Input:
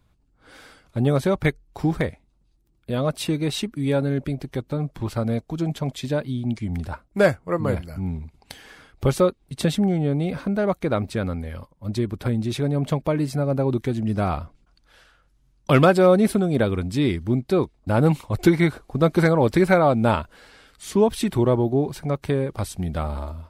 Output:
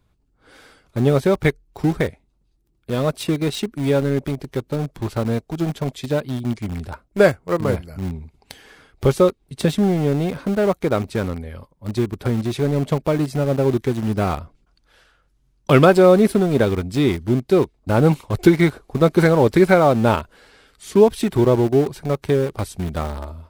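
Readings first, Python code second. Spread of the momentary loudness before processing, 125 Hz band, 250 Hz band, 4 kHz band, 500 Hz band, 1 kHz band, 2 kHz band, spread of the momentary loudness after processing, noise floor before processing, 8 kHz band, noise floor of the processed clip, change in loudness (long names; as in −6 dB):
11 LU, +2.0 dB, +3.0 dB, +2.0 dB, +4.5 dB, +2.5 dB, +2.5 dB, 12 LU, −63 dBFS, +1.5 dB, −64 dBFS, +3.5 dB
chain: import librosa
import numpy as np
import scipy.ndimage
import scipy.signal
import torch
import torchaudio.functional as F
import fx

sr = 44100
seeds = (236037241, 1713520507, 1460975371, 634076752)

p1 = fx.peak_eq(x, sr, hz=410.0, db=4.5, octaves=0.37)
p2 = np.where(np.abs(p1) >= 10.0 ** (-22.0 / 20.0), p1, 0.0)
p3 = p1 + (p2 * 10.0 ** (-6.0 / 20.0))
y = p3 * 10.0 ** (-1.0 / 20.0)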